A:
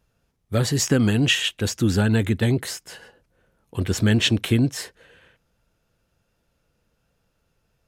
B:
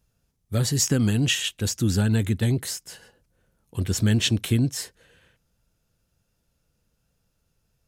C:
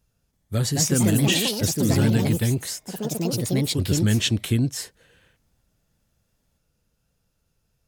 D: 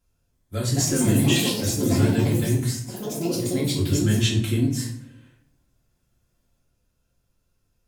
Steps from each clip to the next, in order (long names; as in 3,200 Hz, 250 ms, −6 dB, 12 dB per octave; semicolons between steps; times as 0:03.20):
bass and treble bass +6 dB, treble +9 dB; level −6.5 dB
delay with pitch and tempo change per echo 331 ms, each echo +4 semitones, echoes 3
convolution reverb RT60 0.65 s, pre-delay 3 ms, DRR −4.5 dB; level −6.5 dB